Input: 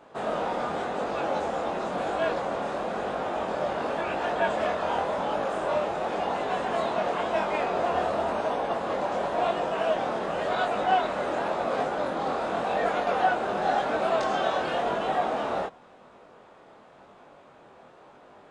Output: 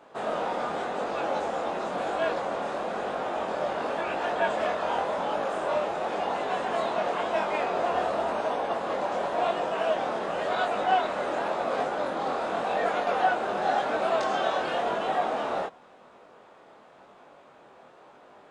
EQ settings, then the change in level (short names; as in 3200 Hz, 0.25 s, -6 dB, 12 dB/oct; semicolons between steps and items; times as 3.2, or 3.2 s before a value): low shelf 170 Hz -8 dB; 0.0 dB